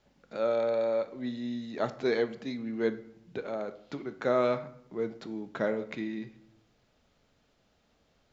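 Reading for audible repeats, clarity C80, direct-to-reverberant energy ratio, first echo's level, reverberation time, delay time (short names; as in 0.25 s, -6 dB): none, 18.0 dB, 10.5 dB, none, 0.70 s, none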